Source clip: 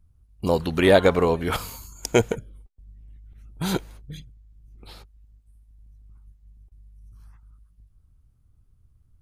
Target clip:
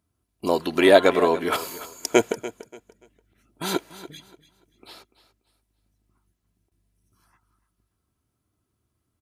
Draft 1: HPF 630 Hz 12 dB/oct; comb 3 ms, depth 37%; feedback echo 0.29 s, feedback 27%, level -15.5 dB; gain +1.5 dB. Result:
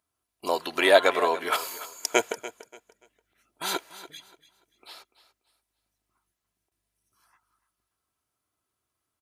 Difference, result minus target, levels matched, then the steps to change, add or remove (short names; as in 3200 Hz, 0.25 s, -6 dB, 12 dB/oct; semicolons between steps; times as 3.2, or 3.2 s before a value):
250 Hz band -7.0 dB
change: HPF 250 Hz 12 dB/oct